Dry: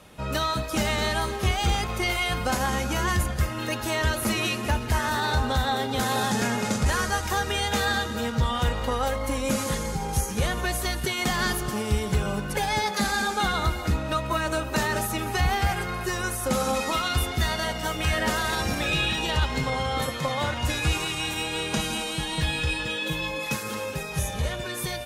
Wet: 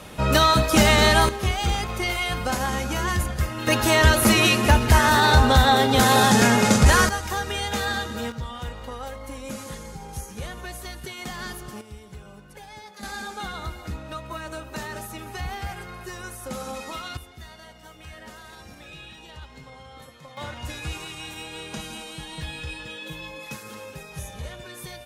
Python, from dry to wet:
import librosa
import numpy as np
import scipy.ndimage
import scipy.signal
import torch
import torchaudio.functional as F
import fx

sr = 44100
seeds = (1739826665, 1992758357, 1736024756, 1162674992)

y = fx.gain(x, sr, db=fx.steps((0.0, 9.0), (1.29, 0.0), (3.67, 8.5), (7.09, -1.5), (8.32, -9.0), (11.81, -17.5), (13.03, -8.5), (17.17, -18.0), (20.37, -8.0)))